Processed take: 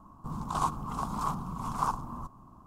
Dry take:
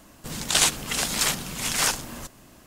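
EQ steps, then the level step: EQ curve 190 Hz 0 dB, 560 Hz -13 dB, 1100 Hz +8 dB, 1800 Hz -29 dB, 6200 Hz -25 dB; 0.0 dB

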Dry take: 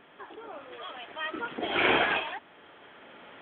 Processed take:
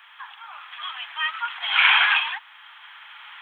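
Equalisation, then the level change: steep high-pass 890 Hz 48 dB/oct; high shelf 2500 Hz +9 dB; +6.0 dB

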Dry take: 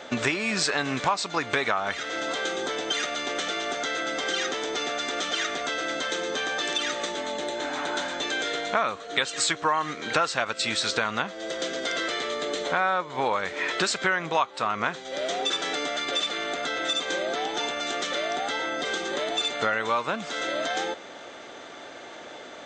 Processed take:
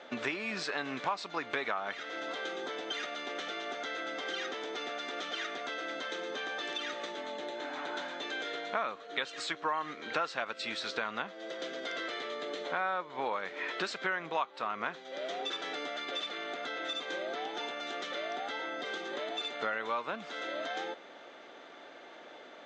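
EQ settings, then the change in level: BPF 200–4100 Hz; -8.5 dB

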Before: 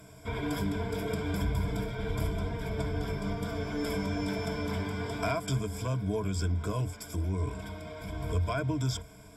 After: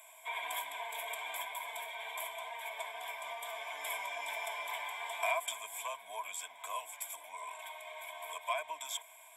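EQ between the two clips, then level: HPF 780 Hz 24 dB/oct; high shelf 5700 Hz +4.5 dB; fixed phaser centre 1400 Hz, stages 6; +4.0 dB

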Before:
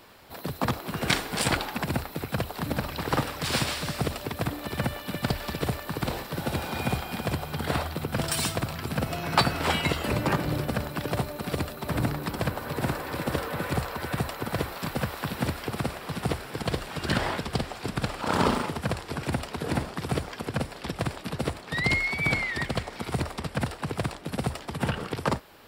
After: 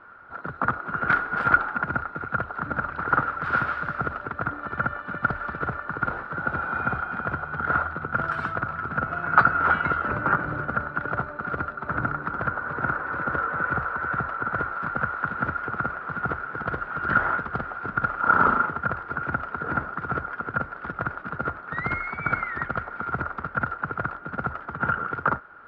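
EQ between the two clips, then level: synth low-pass 1400 Hz, resonance Q 16; -4.5 dB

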